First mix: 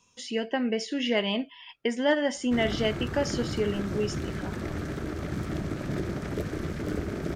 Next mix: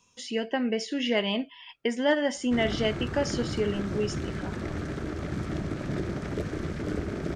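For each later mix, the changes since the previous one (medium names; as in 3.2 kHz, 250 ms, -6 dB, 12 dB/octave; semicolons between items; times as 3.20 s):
background: add Bessel low-pass 8.4 kHz, order 4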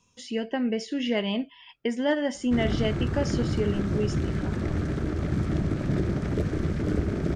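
speech -3.0 dB; master: add bass shelf 300 Hz +8 dB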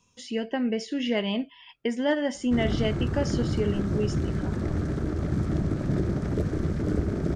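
background: add peaking EQ 2.6 kHz -6 dB 1.2 oct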